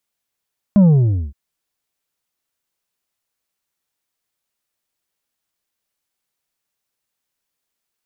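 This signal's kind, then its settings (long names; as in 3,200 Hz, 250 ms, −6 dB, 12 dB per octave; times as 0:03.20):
bass drop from 210 Hz, over 0.57 s, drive 5.5 dB, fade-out 0.51 s, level −7.5 dB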